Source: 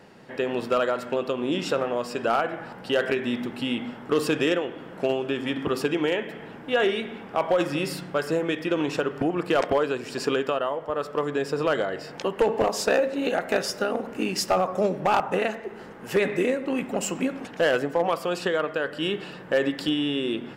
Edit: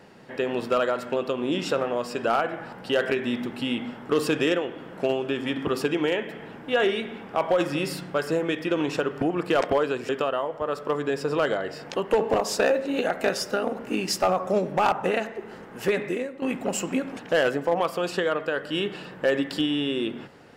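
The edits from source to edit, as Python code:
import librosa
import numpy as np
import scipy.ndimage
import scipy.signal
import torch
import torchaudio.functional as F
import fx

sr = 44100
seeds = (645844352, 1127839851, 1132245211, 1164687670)

y = fx.edit(x, sr, fx.cut(start_s=10.09, length_s=0.28),
    fx.fade_out_to(start_s=16.05, length_s=0.65, floor_db=-11.0), tone=tone)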